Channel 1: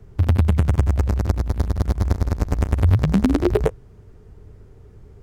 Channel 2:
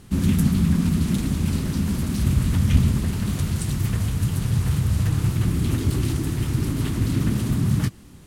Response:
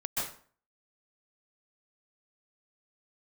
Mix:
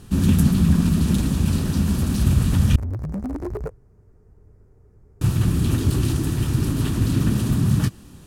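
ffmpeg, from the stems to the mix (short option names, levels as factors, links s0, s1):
-filter_complex "[0:a]asoftclip=type=hard:threshold=0.15,equalizer=f=3300:t=o:w=0.9:g=-14.5,volume=0.422[s0];[1:a]bandreject=f=2100:w=7.4,volume=1.26,asplit=3[s1][s2][s3];[s1]atrim=end=2.76,asetpts=PTS-STARTPTS,afade=t=out:st=2.756:d=0.004:c=hsin[s4];[s2]atrim=start=2.76:end=5.21,asetpts=PTS-STARTPTS,volume=0[s5];[s3]atrim=start=5.21,asetpts=PTS-STARTPTS,afade=t=in:d=0.004:c=hsin[s6];[s4][s5][s6]concat=n=3:v=0:a=1[s7];[s0][s7]amix=inputs=2:normalize=0"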